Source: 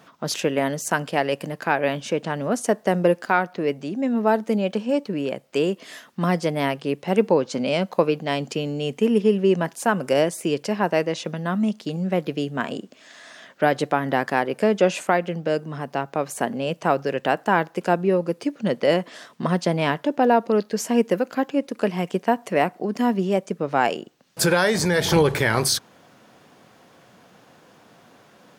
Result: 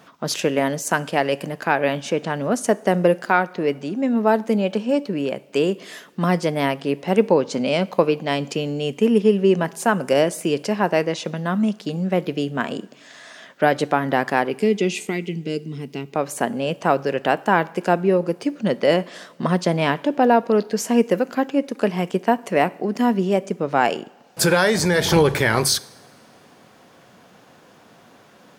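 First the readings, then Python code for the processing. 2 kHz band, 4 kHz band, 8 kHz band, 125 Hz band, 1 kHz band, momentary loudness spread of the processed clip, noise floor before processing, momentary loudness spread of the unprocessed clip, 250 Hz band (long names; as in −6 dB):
+2.0 dB, +2.0 dB, +2.0 dB, +2.0 dB, +2.0 dB, 9 LU, −54 dBFS, 8 LU, +2.0 dB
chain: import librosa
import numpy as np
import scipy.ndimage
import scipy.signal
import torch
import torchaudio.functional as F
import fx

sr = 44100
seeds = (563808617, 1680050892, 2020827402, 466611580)

y = fx.spec_box(x, sr, start_s=14.51, length_s=1.63, low_hz=460.0, high_hz=1900.0, gain_db=-18)
y = fx.rev_double_slope(y, sr, seeds[0], early_s=0.63, late_s=2.5, knee_db=-15, drr_db=18.0)
y = y * librosa.db_to_amplitude(2.0)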